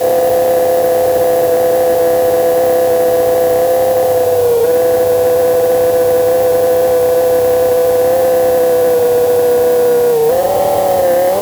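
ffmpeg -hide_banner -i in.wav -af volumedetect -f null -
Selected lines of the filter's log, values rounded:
mean_volume: -10.6 dB
max_volume: -3.7 dB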